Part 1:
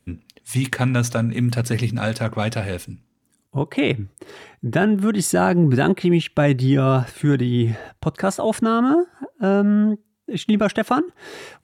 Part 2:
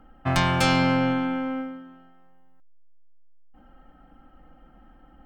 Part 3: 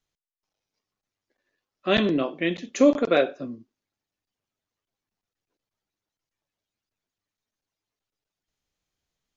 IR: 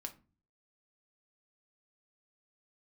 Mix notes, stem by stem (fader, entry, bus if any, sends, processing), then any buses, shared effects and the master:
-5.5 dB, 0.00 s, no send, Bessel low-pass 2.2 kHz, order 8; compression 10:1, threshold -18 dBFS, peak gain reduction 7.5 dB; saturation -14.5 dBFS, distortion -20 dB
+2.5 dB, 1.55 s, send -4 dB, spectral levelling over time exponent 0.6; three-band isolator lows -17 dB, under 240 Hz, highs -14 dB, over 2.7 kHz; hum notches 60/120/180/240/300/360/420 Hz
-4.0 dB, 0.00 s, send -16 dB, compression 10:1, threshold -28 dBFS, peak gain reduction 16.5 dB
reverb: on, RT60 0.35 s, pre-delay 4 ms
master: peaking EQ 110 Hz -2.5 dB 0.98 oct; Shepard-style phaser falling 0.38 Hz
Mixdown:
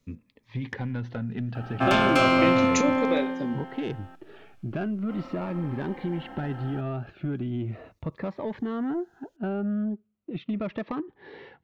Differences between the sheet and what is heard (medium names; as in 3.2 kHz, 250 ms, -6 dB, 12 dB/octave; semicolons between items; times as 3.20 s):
stem 3 -4.0 dB -> +6.5 dB; reverb return -6.5 dB